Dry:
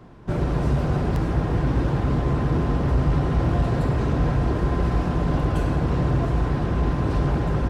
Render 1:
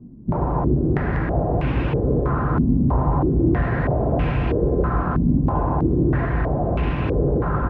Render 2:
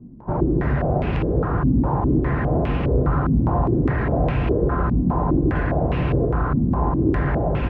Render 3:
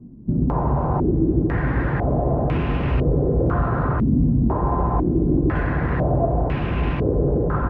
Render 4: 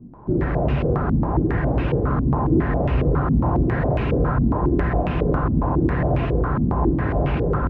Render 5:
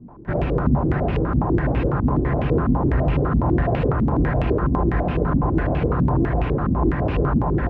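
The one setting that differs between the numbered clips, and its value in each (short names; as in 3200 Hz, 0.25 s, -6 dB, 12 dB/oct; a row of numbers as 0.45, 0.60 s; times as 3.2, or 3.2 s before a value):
stepped low-pass, rate: 3.1, 4.9, 2, 7.3, 12 Hz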